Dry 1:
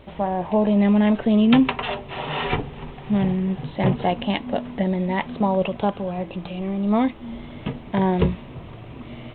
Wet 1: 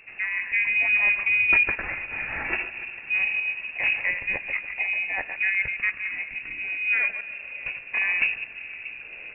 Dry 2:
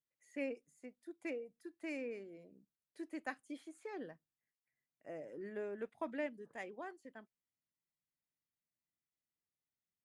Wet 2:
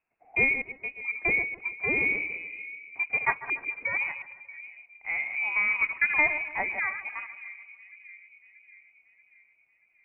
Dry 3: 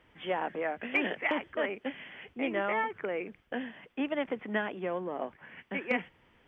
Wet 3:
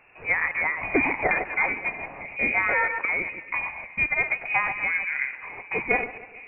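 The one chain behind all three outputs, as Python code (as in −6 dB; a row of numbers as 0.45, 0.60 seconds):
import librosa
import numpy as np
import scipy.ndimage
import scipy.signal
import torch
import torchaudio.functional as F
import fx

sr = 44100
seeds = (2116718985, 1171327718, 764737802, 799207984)

y = fx.reverse_delay(x, sr, ms=103, wet_db=-8.5)
y = fx.echo_split(y, sr, split_hz=690.0, low_ms=633, high_ms=144, feedback_pct=52, wet_db=-15.0)
y = fx.freq_invert(y, sr, carrier_hz=2700)
y = librosa.util.normalize(y) * 10.0 ** (-9 / 20.0)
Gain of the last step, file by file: −5.0, +16.0, +7.0 decibels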